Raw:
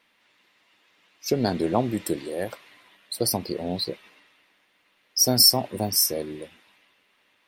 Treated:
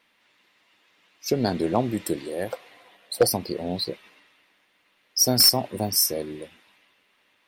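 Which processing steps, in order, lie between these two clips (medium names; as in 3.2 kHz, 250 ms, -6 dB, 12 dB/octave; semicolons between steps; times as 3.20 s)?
2.50–3.27 s: small resonant body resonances 510/720 Hz, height 13 dB, ringing for 35 ms; wavefolder -8.5 dBFS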